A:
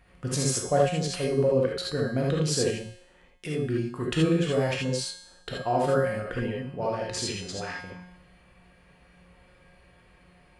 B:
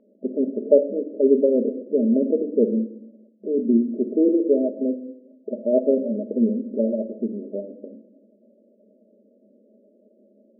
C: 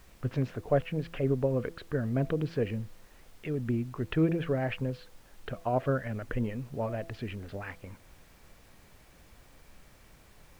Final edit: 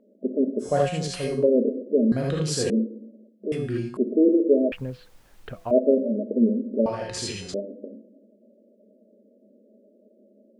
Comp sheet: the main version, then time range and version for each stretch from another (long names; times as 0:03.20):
B
0:00.67–0:01.41: punch in from A, crossfade 0.16 s
0:02.12–0:02.70: punch in from A
0:03.52–0:03.97: punch in from A
0:04.72–0:05.71: punch in from C
0:06.86–0:07.54: punch in from A